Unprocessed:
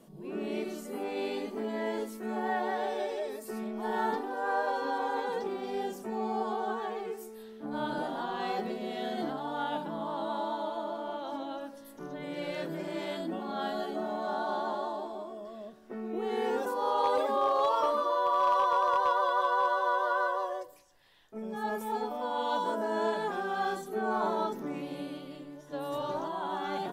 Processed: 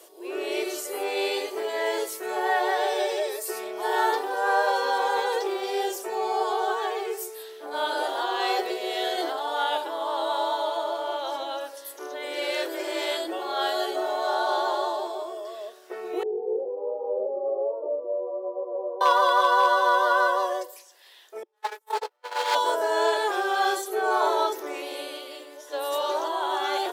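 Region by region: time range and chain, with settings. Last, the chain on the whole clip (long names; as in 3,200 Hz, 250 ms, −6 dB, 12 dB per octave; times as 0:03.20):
0:16.23–0:19.01: Butterworth low-pass 600 Hz + chorus effect 1.3 Hz, delay 16 ms, depth 2.7 ms
0:21.43–0:22.55: lower of the sound and its delayed copy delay 2.2 ms + high-pass filter 390 Hz + noise gate −34 dBFS, range −43 dB
whole clip: Chebyshev high-pass filter 350 Hz, order 5; high-shelf EQ 2,300 Hz +9.5 dB; level +7 dB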